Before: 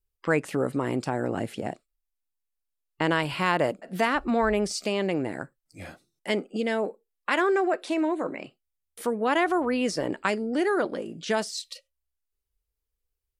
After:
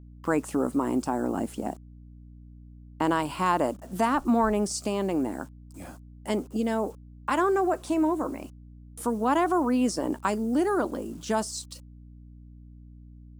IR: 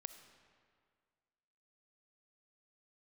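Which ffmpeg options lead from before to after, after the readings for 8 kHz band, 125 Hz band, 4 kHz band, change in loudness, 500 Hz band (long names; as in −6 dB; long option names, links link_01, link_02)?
+2.5 dB, −2.5 dB, −5.5 dB, 0.0 dB, −1.5 dB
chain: -af "acrusher=bits=8:mix=0:aa=0.000001,equalizer=frequency=125:width_type=o:width=1:gain=-11,equalizer=frequency=250:width_type=o:width=1:gain=7,equalizer=frequency=500:width_type=o:width=1:gain=-5,equalizer=frequency=1000:width_type=o:width=1:gain=6,equalizer=frequency=2000:width_type=o:width=1:gain=-10,equalizer=frequency=4000:width_type=o:width=1:gain=-6,equalizer=frequency=8000:width_type=o:width=1:gain=5,aeval=exprs='val(0)+0.00501*(sin(2*PI*60*n/s)+sin(2*PI*2*60*n/s)/2+sin(2*PI*3*60*n/s)/3+sin(2*PI*4*60*n/s)/4+sin(2*PI*5*60*n/s)/5)':channel_layout=same"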